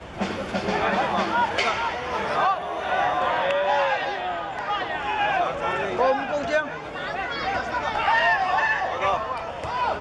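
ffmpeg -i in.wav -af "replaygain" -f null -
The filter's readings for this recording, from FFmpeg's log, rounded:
track_gain = +5.2 dB
track_peak = 0.206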